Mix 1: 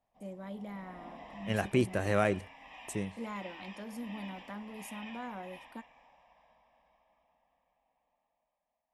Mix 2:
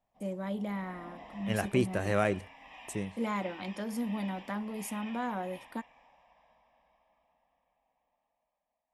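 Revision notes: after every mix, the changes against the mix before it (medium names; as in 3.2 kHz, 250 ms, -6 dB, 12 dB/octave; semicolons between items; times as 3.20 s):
first voice +7.5 dB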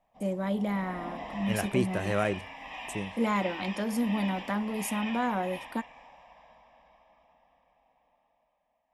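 first voice +5.5 dB; background +9.5 dB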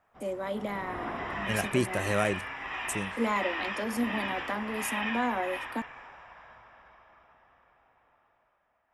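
first voice: add steep high-pass 220 Hz 72 dB/octave; second voice: add treble shelf 4.8 kHz +11 dB; background: remove static phaser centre 380 Hz, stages 6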